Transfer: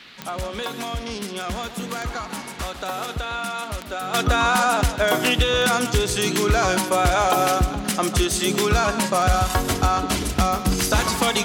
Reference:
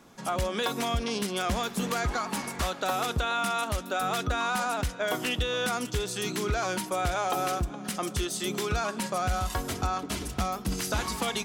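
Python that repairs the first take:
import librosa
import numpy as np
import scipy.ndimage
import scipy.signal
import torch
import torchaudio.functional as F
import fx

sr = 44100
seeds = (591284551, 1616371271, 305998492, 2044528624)

y = fx.fix_declick_ar(x, sr, threshold=10.0)
y = fx.noise_reduce(y, sr, print_start_s=0.0, print_end_s=0.5, reduce_db=6.0)
y = fx.fix_echo_inverse(y, sr, delay_ms=148, level_db=-11.5)
y = fx.gain(y, sr, db=fx.steps((0.0, 0.0), (4.14, -9.5)))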